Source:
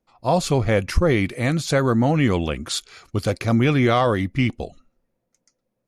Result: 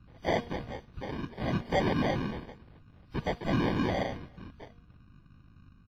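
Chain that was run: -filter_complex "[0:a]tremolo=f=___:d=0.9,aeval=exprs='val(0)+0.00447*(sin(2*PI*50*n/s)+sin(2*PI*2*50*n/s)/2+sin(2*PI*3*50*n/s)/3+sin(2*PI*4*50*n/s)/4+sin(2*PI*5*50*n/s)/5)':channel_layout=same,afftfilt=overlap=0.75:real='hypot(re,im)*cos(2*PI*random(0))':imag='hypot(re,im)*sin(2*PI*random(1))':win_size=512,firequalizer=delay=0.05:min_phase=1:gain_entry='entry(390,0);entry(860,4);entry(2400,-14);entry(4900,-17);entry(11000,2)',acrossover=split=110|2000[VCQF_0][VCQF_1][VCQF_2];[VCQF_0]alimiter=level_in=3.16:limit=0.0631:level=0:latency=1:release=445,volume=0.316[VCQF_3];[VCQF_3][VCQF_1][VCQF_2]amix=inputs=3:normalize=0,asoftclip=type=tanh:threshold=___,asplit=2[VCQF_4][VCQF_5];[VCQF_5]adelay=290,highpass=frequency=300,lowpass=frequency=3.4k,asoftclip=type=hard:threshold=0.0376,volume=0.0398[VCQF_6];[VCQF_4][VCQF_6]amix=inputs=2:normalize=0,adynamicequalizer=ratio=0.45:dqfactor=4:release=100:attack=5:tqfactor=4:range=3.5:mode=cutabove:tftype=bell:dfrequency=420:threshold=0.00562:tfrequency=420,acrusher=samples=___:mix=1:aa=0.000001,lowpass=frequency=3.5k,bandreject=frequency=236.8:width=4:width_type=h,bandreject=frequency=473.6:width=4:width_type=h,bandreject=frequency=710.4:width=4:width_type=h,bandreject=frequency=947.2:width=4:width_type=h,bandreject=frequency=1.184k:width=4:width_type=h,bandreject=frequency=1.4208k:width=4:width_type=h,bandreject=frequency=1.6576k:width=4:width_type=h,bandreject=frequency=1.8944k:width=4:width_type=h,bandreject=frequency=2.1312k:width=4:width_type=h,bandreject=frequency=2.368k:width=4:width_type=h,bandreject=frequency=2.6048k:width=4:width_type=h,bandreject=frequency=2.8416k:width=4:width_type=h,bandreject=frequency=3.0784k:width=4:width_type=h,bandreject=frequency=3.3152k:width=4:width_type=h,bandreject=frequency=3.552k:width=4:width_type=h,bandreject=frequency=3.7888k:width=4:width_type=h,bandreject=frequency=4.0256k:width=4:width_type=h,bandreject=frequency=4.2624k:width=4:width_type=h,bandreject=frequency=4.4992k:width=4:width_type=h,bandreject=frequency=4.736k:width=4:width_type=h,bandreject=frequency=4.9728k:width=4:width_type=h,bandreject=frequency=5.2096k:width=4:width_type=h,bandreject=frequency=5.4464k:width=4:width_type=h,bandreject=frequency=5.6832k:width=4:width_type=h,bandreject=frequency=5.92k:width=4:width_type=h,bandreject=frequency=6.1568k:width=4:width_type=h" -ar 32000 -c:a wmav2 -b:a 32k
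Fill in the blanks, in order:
0.57, 0.112, 33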